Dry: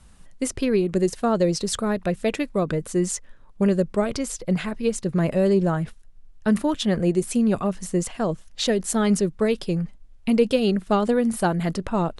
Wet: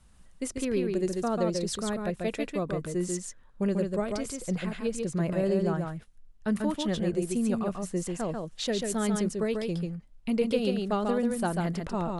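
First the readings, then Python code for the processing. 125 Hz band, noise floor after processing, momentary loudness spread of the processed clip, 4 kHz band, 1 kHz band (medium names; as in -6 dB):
-6.5 dB, -55 dBFS, 6 LU, -6.5 dB, -6.5 dB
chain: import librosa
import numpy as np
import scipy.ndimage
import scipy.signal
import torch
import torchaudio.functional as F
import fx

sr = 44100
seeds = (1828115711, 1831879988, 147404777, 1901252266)

y = x + 10.0 ** (-4.0 / 20.0) * np.pad(x, (int(141 * sr / 1000.0), 0))[:len(x)]
y = y * librosa.db_to_amplitude(-8.0)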